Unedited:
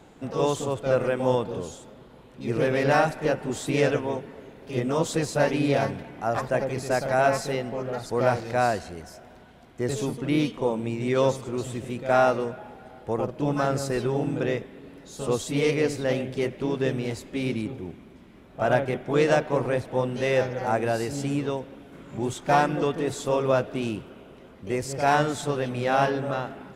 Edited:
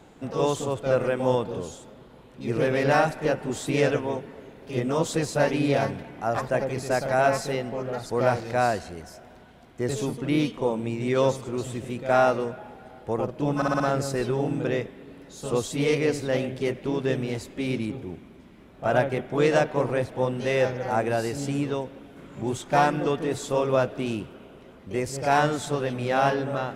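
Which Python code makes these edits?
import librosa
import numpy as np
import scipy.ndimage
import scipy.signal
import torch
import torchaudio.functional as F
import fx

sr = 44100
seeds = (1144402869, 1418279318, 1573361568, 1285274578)

y = fx.edit(x, sr, fx.stutter(start_s=13.56, slice_s=0.06, count=5), tone=tone)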